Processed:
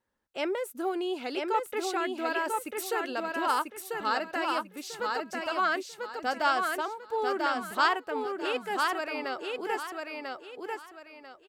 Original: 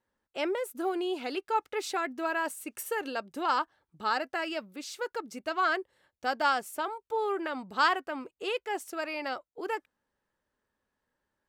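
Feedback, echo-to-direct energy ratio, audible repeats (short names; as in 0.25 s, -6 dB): 29%, -3.0 dB, 3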